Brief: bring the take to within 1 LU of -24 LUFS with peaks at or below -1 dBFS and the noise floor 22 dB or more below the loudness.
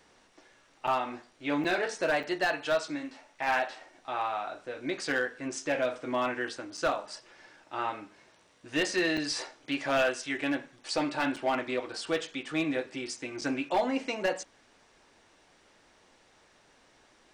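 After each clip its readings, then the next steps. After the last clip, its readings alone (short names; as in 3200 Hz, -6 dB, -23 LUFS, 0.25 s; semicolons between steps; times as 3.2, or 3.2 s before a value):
clipped 0.4%; flat tops at -20.5 dBFS; dropouts 7; longest dropout 5.8 ms; loudness -31.5 LUFS; peak -20.5 dBFS; loudness target -24.0 LUFS
-> clip repair -20.5 dBFS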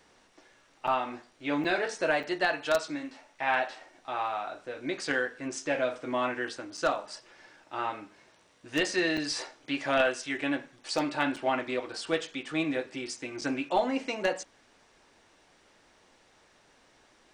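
clipped 0.0%; dropouts 7; longest dropout 5.8 ms
-> interpolate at 0.87/1.64/2.23/6.77/9.17/11.36/13.41, 5.8 ms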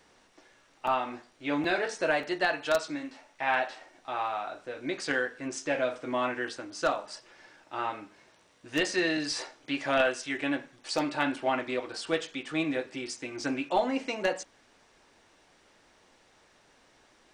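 dropouts 0; loudness -31.0 LUFS; peak -11.5 dBFS; loudness target -24.0 LUFS
-> gain +7 dB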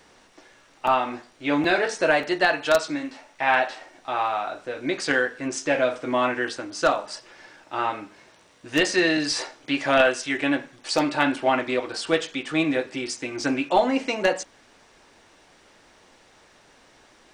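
loudness -24.0 LUFS; peak -4.5 dBFS; noise floor -56 dBFS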